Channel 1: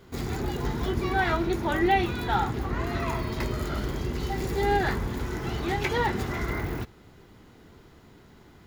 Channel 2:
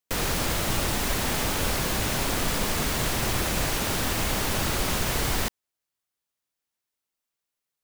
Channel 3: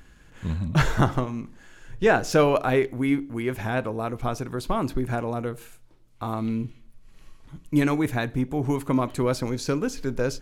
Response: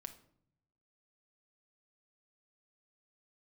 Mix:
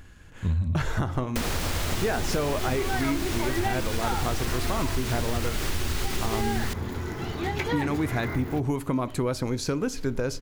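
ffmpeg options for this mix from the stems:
-filter_complex "[0:a]highpass=98,adelay=1750,volume=0.891[s0];[1:a]asubboost=boost=9:cutoff=51,acrossover=split=1200|7800[s1][s2][s3];[s1]acompressor=threshold=0.0501:ratio=4[s4];[s2]acompressor=threshold=0.0224:ratio=4[s5];[s3]acompressor=threshold=0.01:ratio=4[s6];[s4][s5][s6]amix=inputs=3:normalize=0,adelay=1250,volume=1.19[s7];[2:a]alimiter=limit=0.211:level=0:latency=1:release=207,volume=1.19[s8];[s0][s7][s8]amix=inputs=3:normalize=0,equalizer=f=86:w=6.3:g=13.5,acompressor=threshold=0.0794:ratio=6"

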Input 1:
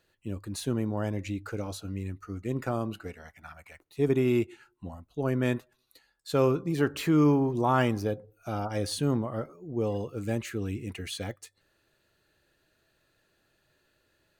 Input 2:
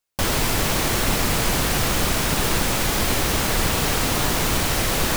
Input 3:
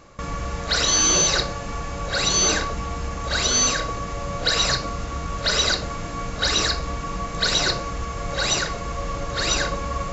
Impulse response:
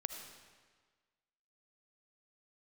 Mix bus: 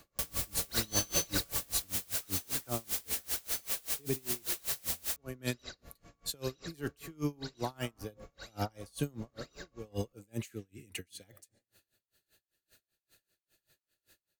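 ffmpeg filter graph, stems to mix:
-filter_complex "[0:a]aeval=exprs='val(0)*pow(10,-19*(0.5-0.5*cos(2*PI*2.2*n/s))/20)':c=same,volume=1.33,asplit=2[s0][s1];[s1]volume=0.141[s2];[1:a]highpass=370,volume=0.106[s3];[2:a]volume=0.335,afade=t=out:st=1.56:d=0.42:silence=0.237137[s4];[s0][s3]amix=inputs=2:normalize=0,crystalizer=i=4:c=0,alimiter=limit=0.112:level=0:latency=1:release=18,volume=1[s5];[3:a]atrim=start_sample=2205[s6];[s2][s6]afir=irnorm=-1:irlink=0[s7];[s4][s5][s7]amix=inputs=3:normalize=0,equalizer=f=1100:t=o:w=0.75:g=-3.5,acrossover=split=140|3000[s8][s9][s10];[s9]acompressor=threshold=0.0398:ratio=6[s11];[s8][s11][s10]amix=inputs=3:normalize=0,aeval=exprs='val(0)*pow(10,-30*(0.5-0.5*cos(2*PI*5.1*n/s))/20)':c=same"

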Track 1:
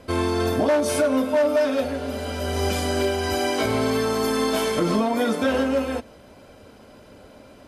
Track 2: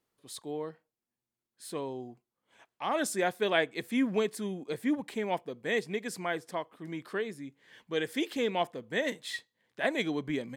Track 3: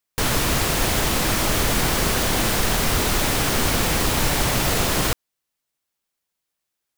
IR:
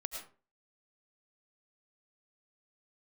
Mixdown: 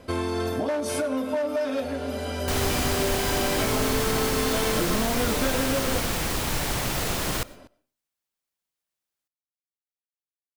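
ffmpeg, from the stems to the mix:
-filter_complex "[0:a]acompressor=threshold=0.0794:ratio=6,volume=0.75,asplit=2[s0][s1];[s1]volume=0.178[s2];[2:a]adelay=2300,volume=0.422,asplit=2[s3][s4];[s4]volume=0.158[s5];[3:a]atrim=start_sample=2205[s6];[s2][s5]amix=inputs=2:normalize=0[s7];[s7][s6]afir=irnorm=-1:irlink=0[s8];[s0][s3][s8]amix=inputs=3:normalize=0"

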